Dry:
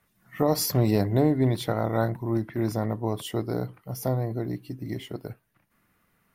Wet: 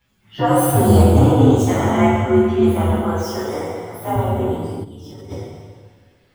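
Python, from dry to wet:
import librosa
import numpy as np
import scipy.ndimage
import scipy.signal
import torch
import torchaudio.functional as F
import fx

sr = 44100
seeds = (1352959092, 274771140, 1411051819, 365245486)

y = fx.partial_stretch(x, sr, pct=123)
y = fx.highpass(y, sr, hz=440.0, slope=6, at=(2.9, 4.16))
y = fx.rev_plate(y, sr, seeds[0], rt60_s=1.8, hf_ratio=0.9, predelay_ms=0, drr_db=-5.5)
y = fx.level_steps(y, sr, step_db=14, at=(4.83, 5.3), fade=0.02)
y = y * librosa.db_to_amplitude(6.0)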